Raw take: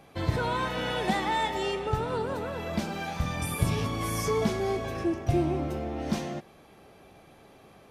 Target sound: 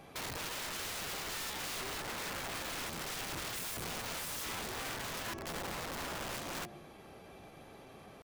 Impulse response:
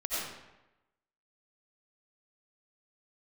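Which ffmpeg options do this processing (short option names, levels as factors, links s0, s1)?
-filter_complex "[0:a]acompressor=threshold=0.02:ratio=8,bandreject=f=69.3:t=h:w=4,bandreject=f=138.6:t=h:w=4,bandreject=f=207.9:t=h:w=4,bandreject=f=277.2:t=h:w=4,bandreject=f=346.5:t=h:w=4,bandreject=f=415.8:t=h:w=4,bandreject=f=485.1:t=h:w=4,bandreject=f=554.4:t=h:w=4,bandreject=f=623.7:t=h:w=4,bandreject=f=693:t=h:w=4,bandreject=f=762.3:t=h:w=4,asplit=2[s0][s1];[1:a]atrim=start_sample=2205[s2];[s1][s2]afir=irnorm=-1:irlink=0,volume=0.075[s3];[s0][s3]amix=inputs=2:normalize=0,aeval=exprs='(mod(59.6*val(0)+1,2)-1)/59.6':c=same,atempo=0.96"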